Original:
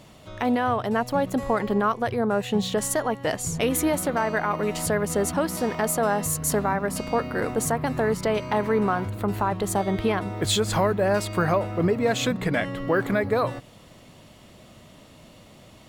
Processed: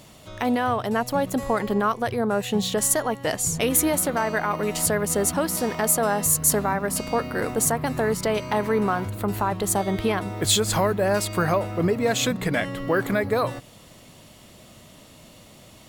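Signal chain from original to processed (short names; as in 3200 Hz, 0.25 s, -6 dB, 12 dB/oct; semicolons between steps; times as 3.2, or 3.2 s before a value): high shelf 5200 Hz +9 dB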